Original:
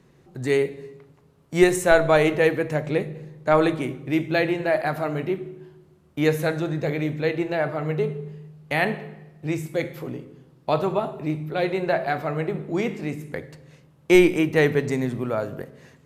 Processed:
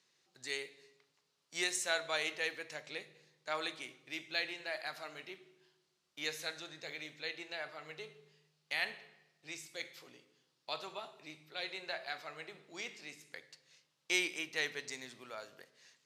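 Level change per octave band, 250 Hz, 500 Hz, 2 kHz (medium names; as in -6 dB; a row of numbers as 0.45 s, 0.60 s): -28.5 dB, -24.0 dB, -11.5 dB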